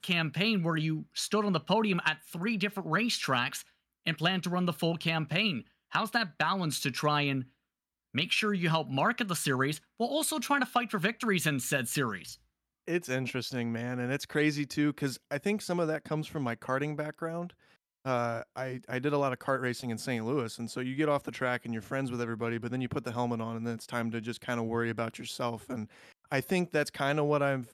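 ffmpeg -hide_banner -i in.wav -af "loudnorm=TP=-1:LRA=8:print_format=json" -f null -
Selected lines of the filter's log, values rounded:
"input_i" : "-31.5",
"input_tp" : "-14.3",
"input_lra" : "4.3",
"input_thresh" : "-41.7",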